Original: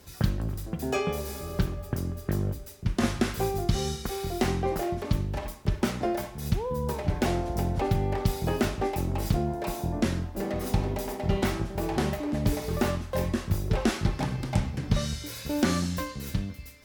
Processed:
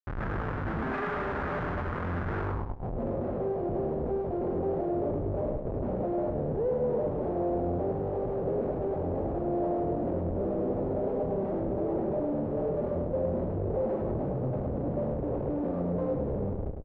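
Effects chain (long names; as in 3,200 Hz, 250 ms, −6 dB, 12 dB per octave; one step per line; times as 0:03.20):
variable-slope delta modulation 16 kbit/s
high-pass filter 170 Hz 6 dB per octave
comparator with hysteresis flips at −43.5 dBFS
on a send: repeating echo 103 ms, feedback 35%, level −5 dB
on the sum: low-pass filter sweep 1,500 Hz → 550 Hz, 0:02.41–0:03.04
level −1.5 dB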